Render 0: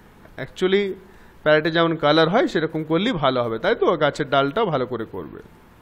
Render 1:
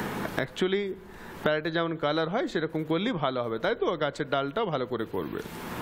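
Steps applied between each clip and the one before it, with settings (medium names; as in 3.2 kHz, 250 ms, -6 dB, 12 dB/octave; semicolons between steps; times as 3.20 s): three bands compressed up and down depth 100%; trim -9 dB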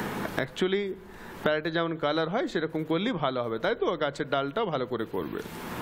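hum notches 50/100/150 Hz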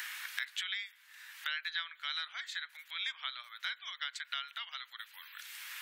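inverse Chebyshev high-pass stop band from 400 Hz, stop band 70 dB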